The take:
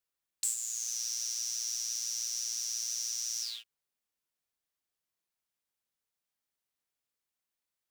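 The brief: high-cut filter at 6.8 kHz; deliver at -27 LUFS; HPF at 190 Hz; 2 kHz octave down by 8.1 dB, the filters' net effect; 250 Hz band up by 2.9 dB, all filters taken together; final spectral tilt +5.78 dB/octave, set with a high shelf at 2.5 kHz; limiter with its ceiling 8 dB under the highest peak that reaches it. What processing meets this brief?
high-pass 190 Hz; low-pass 6.8 kHz; peaking EQ 250 Hz +5 dB; peaking EQ 2 kHz -7 dB; treble shelf 2.5 kHz -6.5 dB; trim +16 dB; peak limiter -17.5 dBFS

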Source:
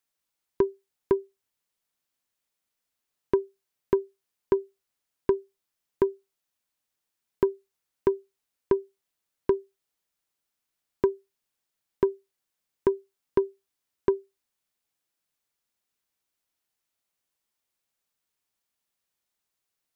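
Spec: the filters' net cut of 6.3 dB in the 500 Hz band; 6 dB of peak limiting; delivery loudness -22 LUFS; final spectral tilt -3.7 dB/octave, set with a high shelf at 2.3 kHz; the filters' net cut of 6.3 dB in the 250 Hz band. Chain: peaking EQ 250 Hz -6.5 dB; peaking EQ 500 Hz -6 dB; treble shelf 2.3 kHz +5 dB; trim +17.5 dB; peak limiter -3 dBFS

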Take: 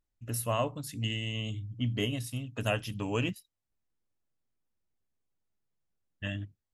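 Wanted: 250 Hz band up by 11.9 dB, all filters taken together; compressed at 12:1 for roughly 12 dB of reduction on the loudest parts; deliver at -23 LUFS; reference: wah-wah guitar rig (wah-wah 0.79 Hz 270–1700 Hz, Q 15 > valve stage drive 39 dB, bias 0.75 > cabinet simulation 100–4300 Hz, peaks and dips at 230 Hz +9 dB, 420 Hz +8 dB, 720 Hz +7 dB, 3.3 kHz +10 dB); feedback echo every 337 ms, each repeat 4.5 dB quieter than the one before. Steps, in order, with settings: peaking EQ 250 Hz +7 dB; compression 12:1, threshold -34 dBFS; feedback delay 337 ms, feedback 60%, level -4.5 dB; wah-wah 0.79 Hz 270–1700 Hz, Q 15; valve stage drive 39 dB, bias 0.75; cabinet simulation 100–4300 Hz, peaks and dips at 230 Hz +9 dB, 420 Hz +8 dB, 720 Hz +7 dB, 3.3 kHz +10 dB; trim +30 dB

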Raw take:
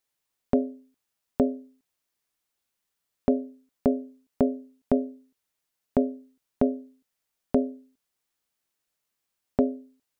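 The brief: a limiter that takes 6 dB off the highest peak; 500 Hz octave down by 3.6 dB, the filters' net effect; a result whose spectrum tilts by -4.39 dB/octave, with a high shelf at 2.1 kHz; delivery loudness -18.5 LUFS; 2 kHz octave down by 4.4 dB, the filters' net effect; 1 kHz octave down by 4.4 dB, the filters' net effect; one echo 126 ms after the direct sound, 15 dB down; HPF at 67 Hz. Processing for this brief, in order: high-pass 67 Hz; peaking EQ 500 Hz -3.5 dB; peaking EQ 1 kHz -4.5 dB; peaking EQ 2 kHz -5.5 dB; treble shelf 2.1 kHz +3 dB; peak limiter -17.5 dBFS; delay 126 ms -15 dB; trim +15 dB

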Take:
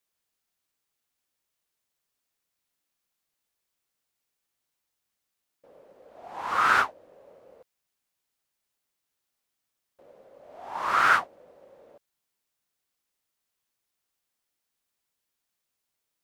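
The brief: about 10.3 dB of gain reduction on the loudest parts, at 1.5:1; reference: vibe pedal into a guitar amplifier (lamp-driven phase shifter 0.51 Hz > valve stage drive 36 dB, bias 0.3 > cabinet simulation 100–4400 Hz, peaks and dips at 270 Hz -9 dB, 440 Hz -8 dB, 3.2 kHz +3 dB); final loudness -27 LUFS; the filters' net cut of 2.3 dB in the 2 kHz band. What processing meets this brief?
peaking EQ 2 kHz -3.5 dB; compression 1.5:1, threshold -48 dBFS; lamp-driven phase shifter 0.51 Hz; valve stage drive 36 dB, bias 0.3; cabinet simulation 100–4400 Hz, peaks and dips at 270 Hz -9 dB, 440 Hz -8 dB, 3.2 kHz +3 dB; trim +17 dB

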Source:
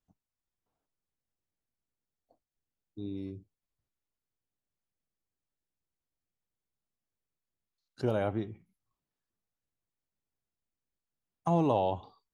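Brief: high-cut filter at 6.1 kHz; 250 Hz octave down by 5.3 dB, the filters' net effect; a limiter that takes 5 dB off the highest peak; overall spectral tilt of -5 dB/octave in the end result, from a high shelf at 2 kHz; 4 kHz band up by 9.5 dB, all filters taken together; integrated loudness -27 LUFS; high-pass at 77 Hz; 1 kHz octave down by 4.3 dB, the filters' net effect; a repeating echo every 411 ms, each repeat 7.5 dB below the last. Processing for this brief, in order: high-pass 77 Hz; low-pass 6.1 kHz; peaking EQ 250 Hz -8 dB; peaking EQ 1 kHz -6.5 dB; treble shelf 2 kHz +4.5 dB; peaking EQ 4 kHz +9 dB; peak limiter -23 dBFS; feedback delay 411 ms, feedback 42%, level -7.5 dB; trim +11 dB

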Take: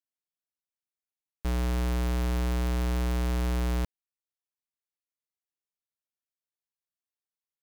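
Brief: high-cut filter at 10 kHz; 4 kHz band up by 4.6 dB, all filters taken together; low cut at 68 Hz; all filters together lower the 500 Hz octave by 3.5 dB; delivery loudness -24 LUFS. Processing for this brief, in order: high-pass 68 Hz; low-pass 10 kHz; peaking EQ 500 Hz -4.5 dB; peaking EQ 4 kHz +6 dB; trim +8.5 dB

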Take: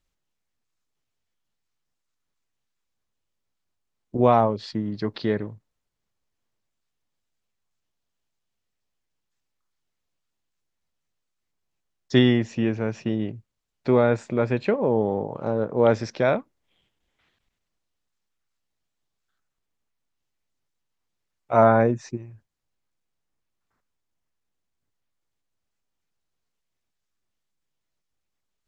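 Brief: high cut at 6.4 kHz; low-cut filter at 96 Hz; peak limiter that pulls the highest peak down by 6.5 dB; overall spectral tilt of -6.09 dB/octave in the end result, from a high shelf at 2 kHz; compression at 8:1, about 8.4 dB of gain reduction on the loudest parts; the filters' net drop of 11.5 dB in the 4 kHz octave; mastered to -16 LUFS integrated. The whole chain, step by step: high-pass 96 Hz; low-pass 6.4 kHz; treble shelf 2 kHz -8 dB; peaking EQ 4 kHz -7 dB; compression 8:1, threshold -21 dBFS; trim +14.5 dB; peak limiter -4 dBFS

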